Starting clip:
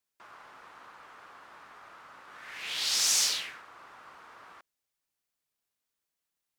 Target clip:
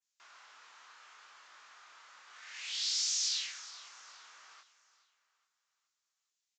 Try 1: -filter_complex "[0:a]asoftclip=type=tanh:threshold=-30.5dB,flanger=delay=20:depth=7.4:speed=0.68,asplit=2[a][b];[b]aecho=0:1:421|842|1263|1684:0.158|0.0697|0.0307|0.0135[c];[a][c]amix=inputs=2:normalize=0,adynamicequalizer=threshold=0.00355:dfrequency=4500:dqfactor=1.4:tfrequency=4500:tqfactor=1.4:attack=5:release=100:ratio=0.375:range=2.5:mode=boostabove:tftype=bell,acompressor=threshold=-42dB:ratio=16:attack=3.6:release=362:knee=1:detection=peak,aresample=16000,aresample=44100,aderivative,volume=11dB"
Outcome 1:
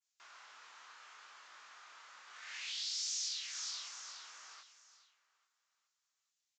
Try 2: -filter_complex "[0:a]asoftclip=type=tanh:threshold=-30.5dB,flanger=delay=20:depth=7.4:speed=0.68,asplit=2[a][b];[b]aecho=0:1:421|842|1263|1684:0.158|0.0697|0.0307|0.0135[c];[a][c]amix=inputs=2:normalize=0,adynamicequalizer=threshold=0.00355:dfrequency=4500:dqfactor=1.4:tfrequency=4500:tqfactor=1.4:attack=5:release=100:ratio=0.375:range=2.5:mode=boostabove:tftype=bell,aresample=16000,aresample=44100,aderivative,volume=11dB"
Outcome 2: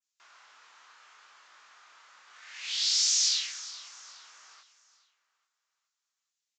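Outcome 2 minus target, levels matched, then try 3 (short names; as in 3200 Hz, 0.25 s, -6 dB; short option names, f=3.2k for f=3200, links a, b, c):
soft clip: distortion -5 dB
-filter_complex "[0:a]asoftclip=type=tanh:threshold=-39dB,flanger=delay=20:depth=7.4:speed=0.68,asplit=2[a][b];[b]aecho=0:1:421|842|1263|1684:0.158|0.0697|0.0307|0.0135[c];[a][c]amix=inputs=2:normalize=0,adynamicequalizer=threshold=0.00355:dfrequency=4500:dqfactor=1.4:tfrequency=4500:tqfactor=1.4:attack=5:release=100:ratio=0.375:range=2.5:mode=boostabove:tftype=bell,aresample=16000,aresample=44100,aderivative,volume=11dB"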